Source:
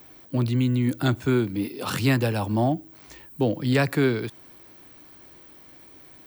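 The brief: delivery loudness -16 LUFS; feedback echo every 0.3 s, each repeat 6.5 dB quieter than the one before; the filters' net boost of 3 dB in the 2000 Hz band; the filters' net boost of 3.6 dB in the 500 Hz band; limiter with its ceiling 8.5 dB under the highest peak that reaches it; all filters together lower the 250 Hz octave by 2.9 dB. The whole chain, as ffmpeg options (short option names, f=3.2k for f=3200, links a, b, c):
-af "equalizer=f=250:t=o:g=-5.5,equalizer=f=500:t=o:g=6.5,equalizer=f=2k:t=o:g=3.5,alimiter=limit=-16dB:level=0:latency=1,aecho=1:1:300|600|900|1200|1500|1800:0.473|0.222|0.105|0.0491|0.0231|0.0109,volume=10.5dB"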